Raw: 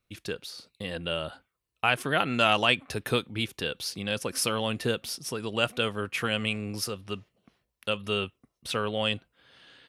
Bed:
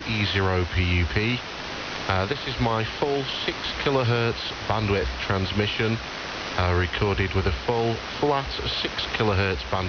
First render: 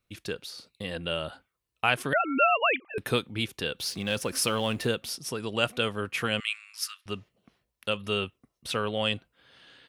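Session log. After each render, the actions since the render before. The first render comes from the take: 2.13–2.98 sine-wave speech; 3.79–4.87 G.711 law mismatch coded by mu; 6.4–7.06 steep high-pass 1300 Hz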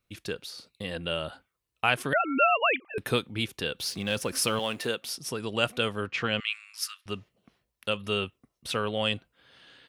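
4.59–5.17 HPF 390 Hz 6 dB/oct; 6.06–6.53 LPF 5900 Hz 24 dB/oct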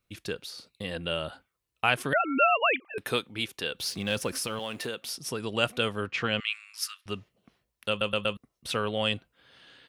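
2.8–3.73 low shelf 240 Hz -9.5 dB; 4.32–5.16 compressor 3:1, threshold -30 dBFS; 7.89 stutter in place 0.12 s, 4 plays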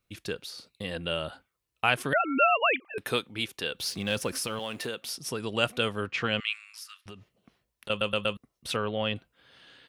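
6.7–7.9 compressor 8:1, threshold -40 dBFS; 8.76–9.16 air absorption 220 m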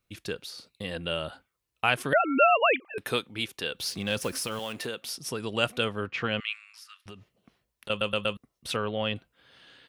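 2.12–2.9 bell 510 Hz +5 dB 1.5 oct; 4.19–4.74 block floating point 5-bit; 5.84–7 high shelf 5000 Hz -9.5 dB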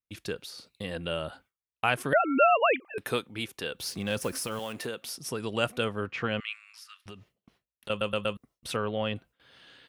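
gate with hold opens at -51 dBFS; dynamic EQ 3600 Hz, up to -5 dB, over -42 dBFS, Q 0.89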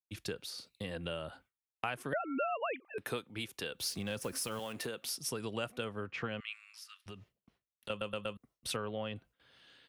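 compressor 4:1, threshold -36 dBFS, peak gain reduction 16 dB; three-band expander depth 40%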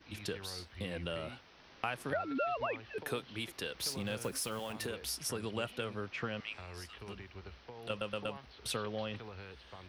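add bed -26 dB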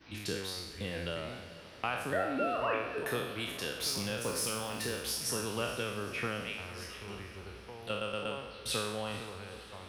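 spectral trails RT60 0.86 s; diffused feedback echo 0.468 s, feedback 58%, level -14.5 dB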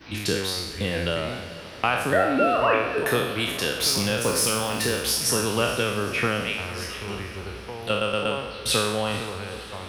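gain +11.5 dB

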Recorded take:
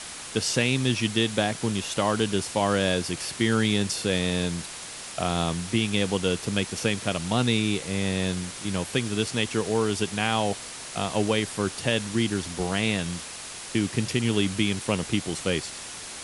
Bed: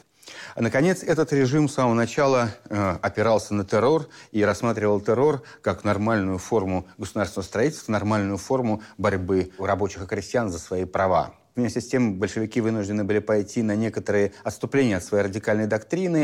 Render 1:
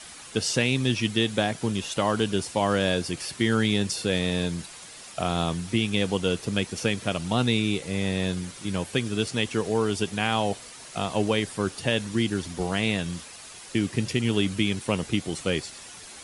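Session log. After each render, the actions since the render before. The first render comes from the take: denoiser 8 dB, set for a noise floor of -39 dBFS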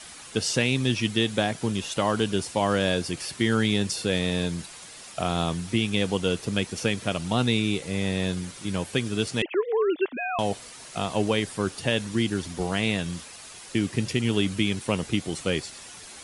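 9.42–10.39 sine-wave speech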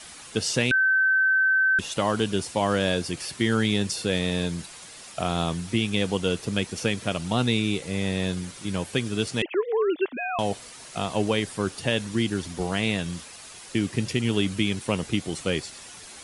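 0.71–1.79 bleep 1540 Hz -17.5 dBFS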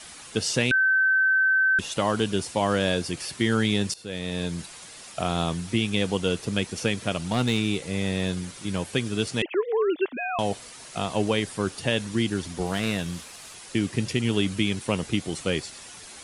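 3.94–4.6 fade in, from -18 dB; 7.16–8.87 hard clip -15 dBFS; 12.66–13.55 CVSD 64 kbps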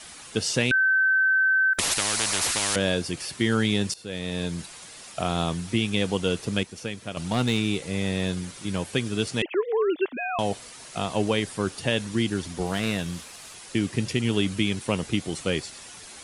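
1.73–2.76 spectral compressor 10:1; 6.63–7.17 gain -7.5 dB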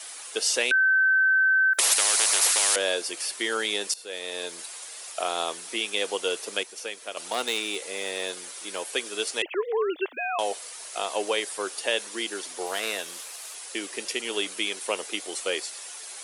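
HPF 410 Hz 24 dB/oct; high shelf 8800 Hz +11 dB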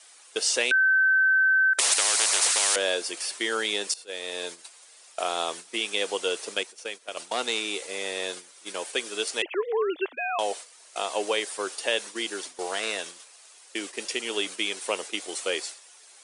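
gate -37 dBFS, range -11 dB; steep low-pass 10000 Hz 96 dB/oct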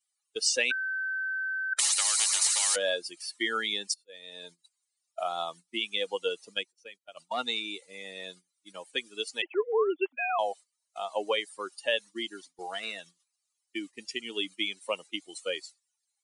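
per-bin expansion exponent 2; negative-ratio compressor -25 dBFS, ratio -0.5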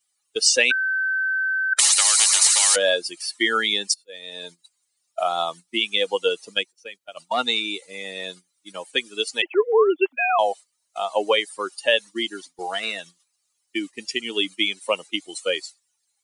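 gain +9 dB

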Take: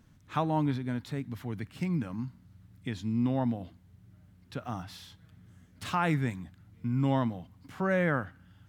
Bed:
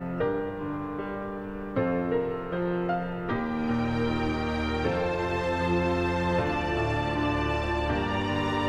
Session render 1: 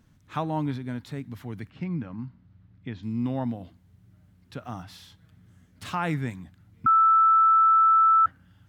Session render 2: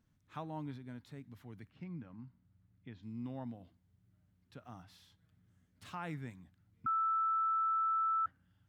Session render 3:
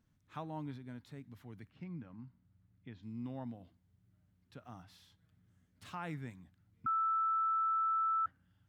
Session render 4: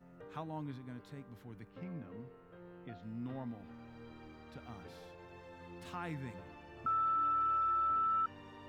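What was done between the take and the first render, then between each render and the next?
1.7–3.03 air absorption 220 m; 6.86–8.26 bleep 1320 Hz -15 dBFS
gain -14.5 dB
nothing audible
add bed -26 dB

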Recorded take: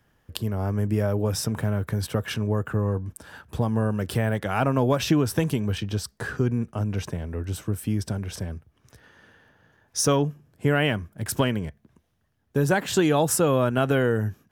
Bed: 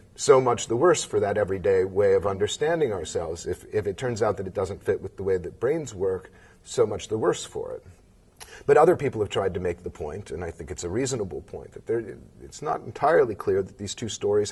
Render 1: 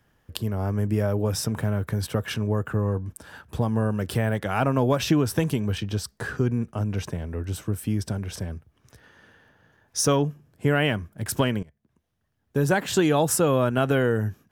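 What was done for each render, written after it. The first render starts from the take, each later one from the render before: 11.63–12.65 fade in, from -22 dB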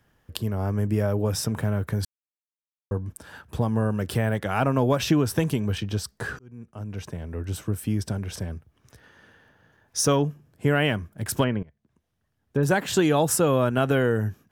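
2.05–2.91 mute; 6.39–7.55 fade in; 11.43–12.63 treble ducked by the level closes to 2200 Hz, closed at -24.5 dBFS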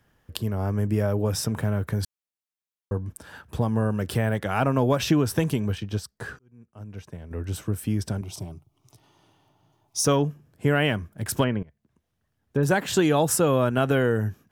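5.68–7.31 upward expander, over -47 dBFS; 8.21–10.05 fixed phaser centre 330 Hz, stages 8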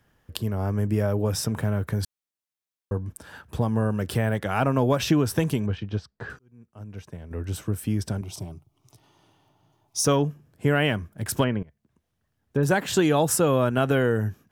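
5.66–6.3 air absorption 180 m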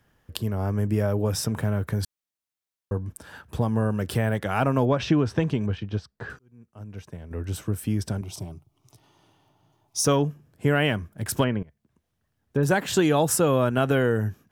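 4.85–5.61 air absorption 140 m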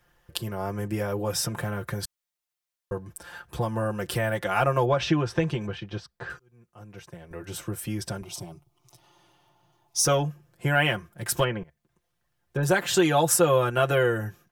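bell 210 Hz -10 dB 1.2 oct; comb 5.7 ms, depth 82%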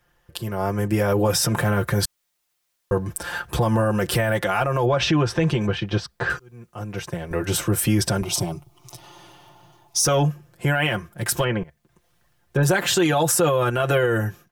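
AGC gain up to 14 dB; limiter -11 dBFS, peak gain reduction 10 dB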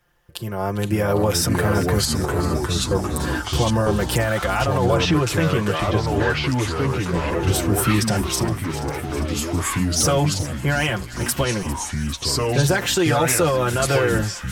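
echoes that change speed 0.4 s, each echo -3 st, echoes 3; thin delay 0.401 s, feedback 78%, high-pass 1500 Hz, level -15 dB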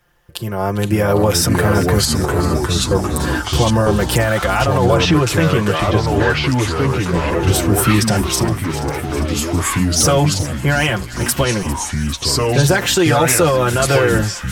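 gain +5 dB; limiter -2 dBFS, peak gain reduction 0.5 dB

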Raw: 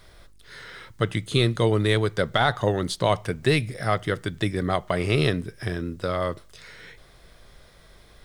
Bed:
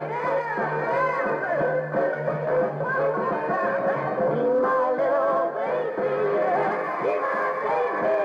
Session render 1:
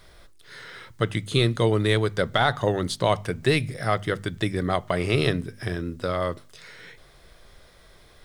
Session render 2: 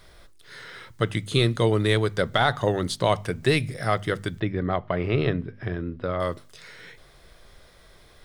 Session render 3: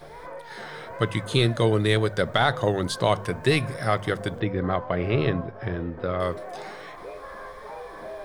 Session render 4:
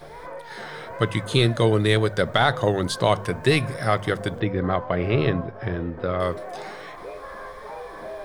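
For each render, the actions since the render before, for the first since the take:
de-hum 50 Hz, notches 5
4.4–6.2 air absorption 360 m
add bed -15 dB
gain +2 dB

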